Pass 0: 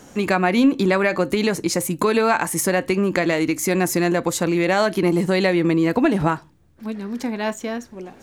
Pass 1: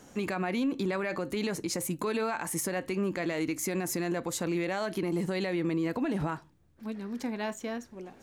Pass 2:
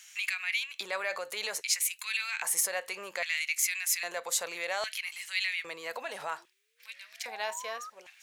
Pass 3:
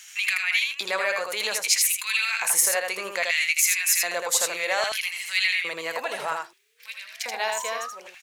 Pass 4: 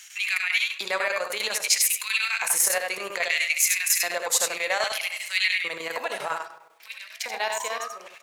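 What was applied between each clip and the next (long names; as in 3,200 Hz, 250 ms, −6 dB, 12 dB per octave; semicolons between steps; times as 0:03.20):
brickwall limiter −14 dBFS, peak gain reduction 8 dB; level −8.5 dB
sound drawn into the spectrogram rise, 0:05.93–0:07.90, 220–1,300 Hz −44 dBFS; guitar amp tone stack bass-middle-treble 10-0-10; auto-filter high-pass square 0.62 Hz 510–2,300 Hz; level +7 dB
single-tap delay 80 ms −4 dB; level +7 dB
convolution reverb RT60 1.1 s, pre-delay 33 ms, DRR 12 dB; square-wave tremolo 10 Hz, depth 60%, duty 80%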